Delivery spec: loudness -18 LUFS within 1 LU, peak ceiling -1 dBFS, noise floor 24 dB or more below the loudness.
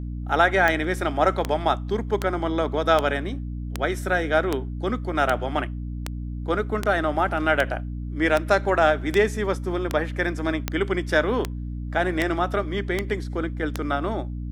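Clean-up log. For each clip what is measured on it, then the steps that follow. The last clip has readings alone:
clicks 18; hum 60 Hz; harmonics up to 300 Hz; hum level -28 dBFS; loudness -24.0 LUFS; peak -5.5 dBFS; loudness target -18.0 LUFS
-> de-click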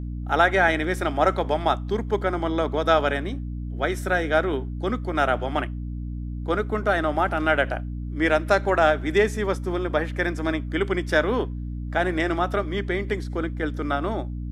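clicks 0; hum 60 Hz; harmonics up to 300 Hz; hum level -28 dBFS
-> de-hum 60 Hz, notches 5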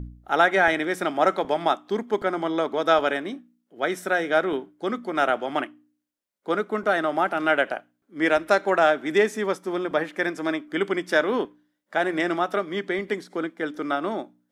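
hum none; loudness -24.5 LUFS; peak -6.0 dBFS; loudness target -18.0 LUFS
-> gain +6.5 dB; limiter -1 dBFS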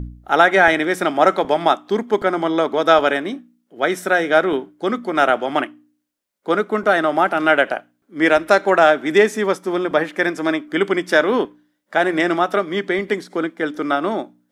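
loudness -18.0 LUFS; peak -1.0 dBFS; noise floor -70 dBFS

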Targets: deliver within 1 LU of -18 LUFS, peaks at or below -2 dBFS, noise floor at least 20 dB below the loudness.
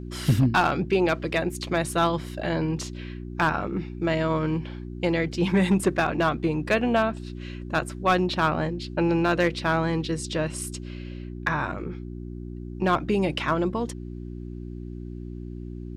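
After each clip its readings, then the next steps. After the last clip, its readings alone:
clipped 0.3%; flat tops at -13.0 dBFS; hum 60 Hz; harmonics up to 360 Hz; hum level -34 dBFS; loudness -25.5 LUFS; peak -13.0 dBFS; loudness target -18.0 LUFS
-> clip repair -13 dBFS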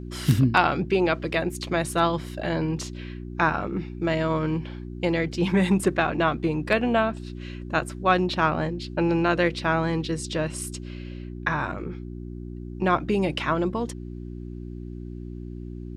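clipped 0.0%; hum 60 Hz; harmonics up to 360 Hz; hum level -33 dBFS
-> de-hum 60 Hz, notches 6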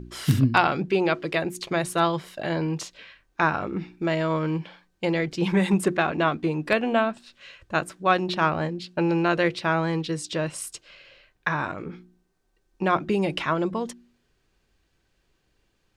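hum none; loudness -25.0 LUFS; peak -4.0 dBFS; loudness target -18.0 LUFS
-> gain +7 dB; limiter -2 dBFS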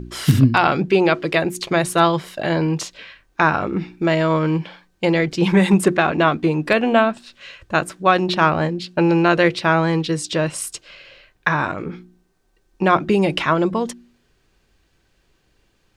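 loudness -18.5 LUFS; peak -2.0 dBFS; noise floor -63 dBFS

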